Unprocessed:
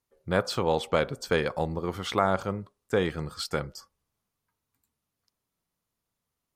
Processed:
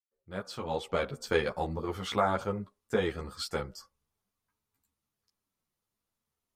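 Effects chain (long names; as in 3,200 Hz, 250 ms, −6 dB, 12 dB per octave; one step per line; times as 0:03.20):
fade in at the beginning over 1.23 s
string-ensemble chorus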